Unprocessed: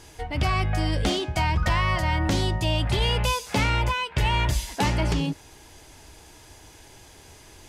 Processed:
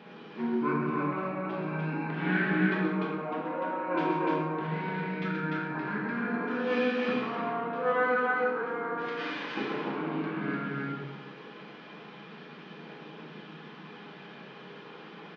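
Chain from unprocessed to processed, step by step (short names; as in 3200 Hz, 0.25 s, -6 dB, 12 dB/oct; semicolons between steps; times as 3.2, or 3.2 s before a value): high shelf 5500 Hz +5 dB; negative-ratio compressor -26 dBFS, ratio -0.5; phaser 0.31 Hz, delay 1.9 ms, feedback 25%; air absorption 140 m; loudspeakers at several distances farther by 22 m -7 dB, 51 m -2 dB; shoebox room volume 130 m³, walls mixed, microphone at 1.3 m; speed mistake 15 ips tape played at 7.5 ips; brick-wall FIR band-pass 150–11000 Hz; gain -5 dB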